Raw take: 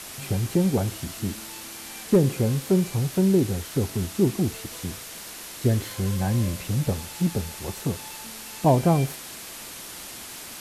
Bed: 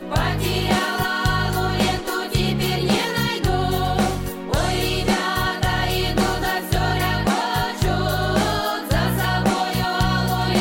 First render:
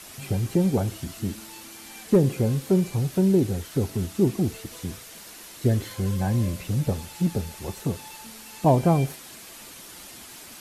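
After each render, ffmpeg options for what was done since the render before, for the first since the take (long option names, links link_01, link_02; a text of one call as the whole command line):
ffmpeg -i in.wav -af "afftdn=noise_reduction=6:noise_floor=-40" out.wav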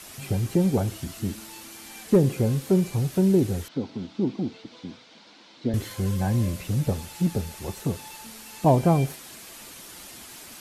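ffmpeg -i in.wav -filter_complex "[0:a]asettb=1/sr,asplit=3[link_01][link_02][link_03];[link_01]atrim=end=3.684[link_04];[link_02]atrim=start=3.68:end=5.74,asetpts=PTS-STARTPTS,afade=type=in:duration=0.004:curve=qsin,afade=type=out:start_time=2.056:duration=0.004:curve=qsin,highpass=230,equalizer=frequency=250:width_type=q:width=4:gain=4,equalizer=frequency=400:width_type=q:width=4:gain=-8,equalizer=frequency=660:width_type=q:width=4:gain=-5,equalizer=frequency=1200:width_type=q:width=4:gain=-6,equalizer=frequency=1800:width_type=q:width=4:gain=-9,equalizer=frequency=2700:width_type=q:width=4:gain=-6,lowpass=frequency=4200:width=0.5412,lowpass=frequency=4200:width=1.3066[link_05];[link_03]atrim=start=5.736[link_06];[link_04][link_05]acrossfade=duration=0.004:curve1=hsin:curve2=qsin[link_07];[link_07][link_06]acrossfade=duration=0.004:curve1=qsin:curve2=hsin" out.wav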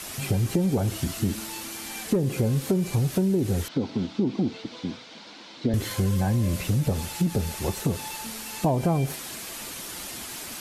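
ffmpeg -i in.wav -filter_complex "[0:a]asplit=2[link_01][link_02];[link_02]alimiter=limit=-21.5dB:level=0:latency=1,volume=1dB[link_03];[link_01][link_03]amix=inputs=2:normalize=0,acompressor=threshold=-20dB:ratio=6" out.wav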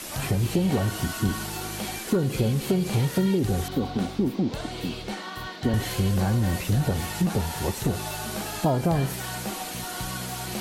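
ffmpeg -i in.wav -i bed.wav -filter_complex "[1:a]volume=-14.5dB[link_01];[0:a][link_01]amix=inputs=2:normalize=0" out.wav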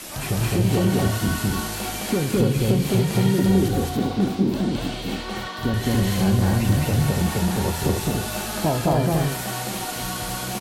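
ffmpeg -i in.wav -filter_complex "[0:a]asplit=2[link_01][link_02];[link_02]adelay=26,volume=-11.5dB[link_03];[link_01][link_03]amix=inputs=2:normalize=0,aecho=1:1:212.8|285.7:1|0.708" out.wav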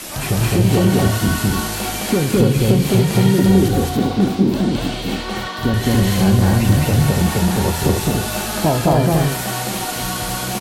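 ffmpeg -i in.wav -af "volume=5.5dB" out.wav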